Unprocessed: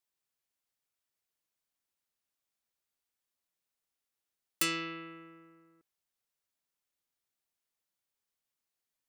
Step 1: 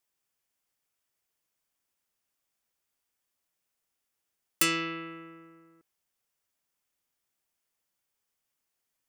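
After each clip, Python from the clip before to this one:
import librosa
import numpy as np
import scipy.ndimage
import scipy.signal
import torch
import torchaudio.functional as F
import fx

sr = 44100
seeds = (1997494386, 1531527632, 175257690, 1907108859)

y = fx.peak_eq(x, sr, hz=4000.0, db=-5.0, octaves=0.28)
y = y * 10.0 ** (5.5 / 20.0)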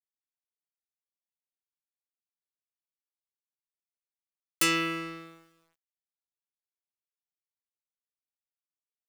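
y = fx.leveller(x, sr, passes=3)
y = fx.quant_dither(y, sr, seeds[0], bits=10, dither='none')
y = y * 10.0 ** (-7.5 / 20.0)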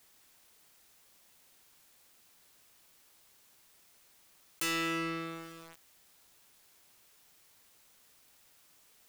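y = np.clip(10.0 ** (31.5 / 20.0) * x, -1.0, 1.0) / 10.0 ** (31.5 / 20.0)
y = fx.env_flatten(y, sr, amount_pct=50)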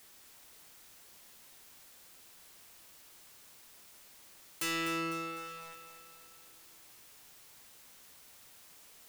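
y = x + 0.5 * 10.0 ** (-50.0 / 20.0) * np.sign(x)
y = fx.echo_feedback(y, sr, ms=251, feedback_pct=53, wet_db=-9.5)
y = y * 10.0 ** (-2.0 / 20.0)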